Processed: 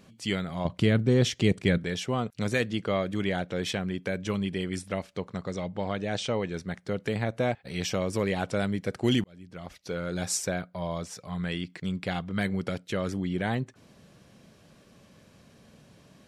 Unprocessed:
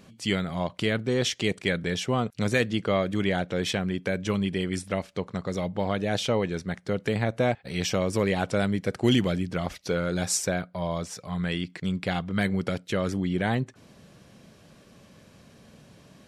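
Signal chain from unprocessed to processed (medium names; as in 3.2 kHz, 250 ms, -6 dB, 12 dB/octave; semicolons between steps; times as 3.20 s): 0.65–1.78 s: bass shelf 310 Hz +12 dB; 5.51–6.54 s: Chebyshev low-pass 9.3 kHz, order 8; 9.24–10.27 s: fade in; trim -3 dB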